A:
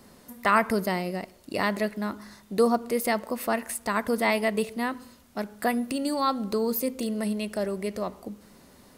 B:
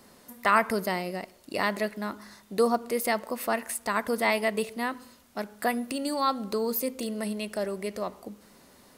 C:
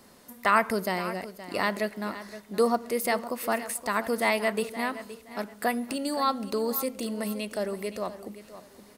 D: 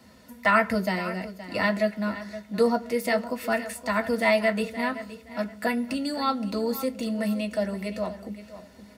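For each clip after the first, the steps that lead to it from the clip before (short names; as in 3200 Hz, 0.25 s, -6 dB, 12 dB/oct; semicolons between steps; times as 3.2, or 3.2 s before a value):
low shelf 260 Hz -7 dB
feedback echo 0.52 s, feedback 25%, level -14 dB
reverb, pre-delay 3 ms, DRR 3 dB; gain -7 dB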